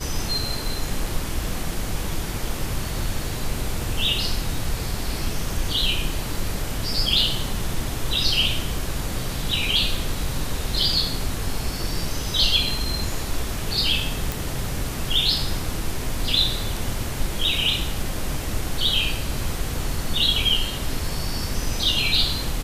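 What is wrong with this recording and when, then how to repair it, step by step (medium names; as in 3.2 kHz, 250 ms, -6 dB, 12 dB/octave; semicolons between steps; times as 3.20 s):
14.32 s: pop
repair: de-click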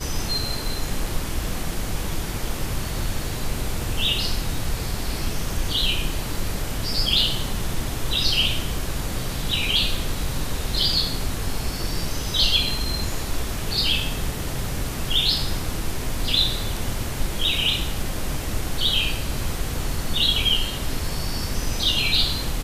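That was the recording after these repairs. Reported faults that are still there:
nothing left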